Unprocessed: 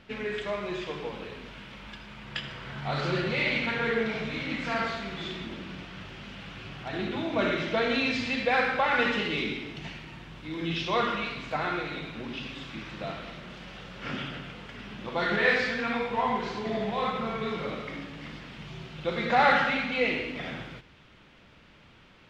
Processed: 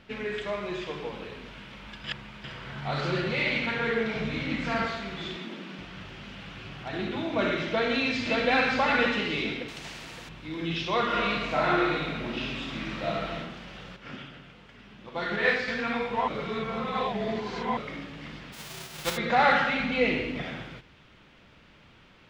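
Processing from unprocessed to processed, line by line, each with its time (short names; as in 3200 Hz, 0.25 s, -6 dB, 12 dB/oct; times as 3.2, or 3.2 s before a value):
2.04–2.44 reverse
4.16–4.86 low shelf 260 Hz +6 dB
5.36–5.79 steep high-pass 170 Hz
7.68–8.48 echo throw 0.57 s, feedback 35%, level -2.5 dB
9.68–10.29 spectral compressor 2:1
11.07–13.39 reverb throw, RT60 0.9 s, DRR -4 dB
13.96–15.68 upward expander, over -37 dBFS
16.28–17.77 reverse
18.52–19.16 spectral whitening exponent 0.3
19.8–20.43 low shelf 340 Hz +7 dB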